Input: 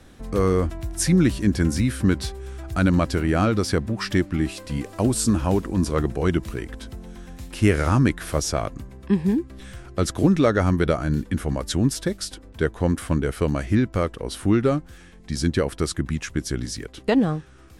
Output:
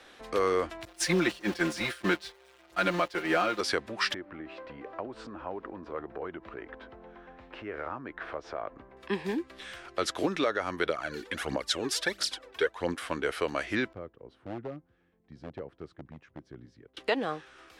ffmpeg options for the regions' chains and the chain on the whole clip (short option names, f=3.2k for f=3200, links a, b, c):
-filter_complex "[0:a]asettb=1/sr,asplit=3[a][b][c];[a]atrim=end=0.854[d];[b]atrim=start=0.85:end=3.61,asetpts=PTS-STARTPTS,afade=t=in:d=0.004:c=qsin,afade=t=out:st=2.756:d=0.004:c=qsin,aeval=exprs='val(0)+0.5*0.0355*sgn(val(0))':c=same,agate=range=-33dB:threshold=-16dB:ratio=3:release=100:detection=peak,aecho=1:1:5.7:0.99,atrim=end_sample=121716[e];[c]atrim=start=3.606[f];[d][e]acrossfade=d=0.004:c1=hsin:c2=qsin[g];[g][f]acrossfade=d=0.004:c1=qsin:c2=hsin,asettb=1/sr,asplit=3[h][i][j];[h]atrim=end=4.144[k];[i]atrim=start=4.14:end=8.97,asetpts=PTS-STARTPTS,afade=t=in:d=0.004:c=qsin,afade=t=out:st=4.826:d=0.004:c=qsin,lowpass=1.3k,acompressor=threshold=-29dB:ratio=4:attack=3.2:release=140:knee=1:detection=peak[l];[j]atrim=start=8.966[m];[k][l]acrossfade=d=0.004:c1=hsin:c2=qsin[n];[n][m]acrossfade=d=0.004:c1=qsin:c2=hsin,asettb=1/sr,asplit=3[o][p][q];[o]atrim=end=10.894[r];[p]atrim=start=10.89:end=12.94,asetpts=PTS-STARTPTS,afade=t=in:d=0.004:c=qsin,afade=t=out:st=2.046:d=0.004:c=qsin,highpass=f=93:p=1,aphaser=in_gain=1:out_gain=1:delay=2.8:decay=0.65:speed=1.5:type=triangular[s];[q]atrim=start=12.936[t];[r][s]acrossfade=d=0.004:c1=hsin:c2=qsin[u];[u][t]acrossfade=d=0.004:c1=qsin:c2=hsin,asettb=1/sr,asplit=3[v][w][x];[v]atrim=end=13.934[y];[w]atrim=start=13.93:end=16.97,asetpts=PTS-STARTPTS,afade=t=in:d=0.004:c=qsin,afade=t=out:st=3.036:d=0.004:c=qsin,bandpass=f=120:t=q:w=1.5,volume=20.5dB,asoftclip=hard,volume=-20.5dB[z];[x]atrim=start=16.966[aa];[y][z]acrossfade=d=0.004:c1=hsin:c2=qsin[ab];[ab][aa]acrossfade=d=0.004:c1=qsin:c2=hsin,acrossover=split=370 4300:gain=0.0794 1 0.158[ac][ad][ae];[ac][ad][ae]amix=inputs=3:normalize=0,alimiter=limit=-17.5dB:level=0:latency=1:release=378,highshelf=f=2.2k:g=8.5"